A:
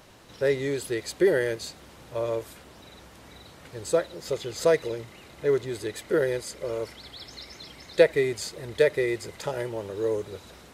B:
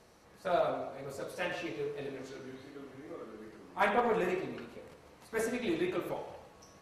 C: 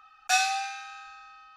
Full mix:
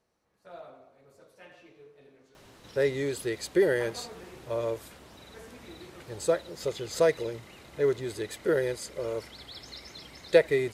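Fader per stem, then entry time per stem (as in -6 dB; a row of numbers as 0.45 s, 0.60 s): -2.0 dB, -16.0 dB, mute; 2.35 s, 0.00 s, mute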